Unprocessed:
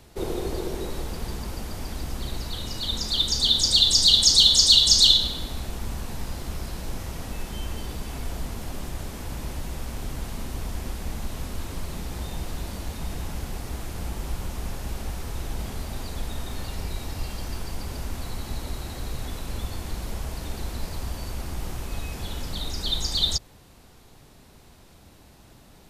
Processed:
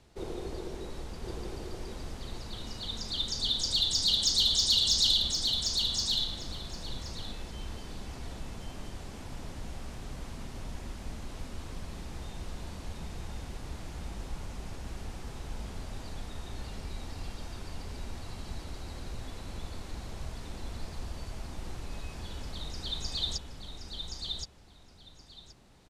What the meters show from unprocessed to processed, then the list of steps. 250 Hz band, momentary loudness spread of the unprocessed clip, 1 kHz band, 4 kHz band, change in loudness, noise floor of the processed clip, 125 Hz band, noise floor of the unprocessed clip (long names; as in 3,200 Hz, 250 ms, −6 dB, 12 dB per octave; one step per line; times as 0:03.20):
−7.5 dB, 20 LU, −7.5 dB, −8.5 dB, −8.5 dB, −53 dBFS, −8.0 dB, −52 dBFS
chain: low-pass filter 8,200 Hz 12 dB per octave
soft clipping −5.5 dBFS, distortion −25 dB
repeating echo 1,073 ms, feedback 17%, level −4 dB
level −9 dB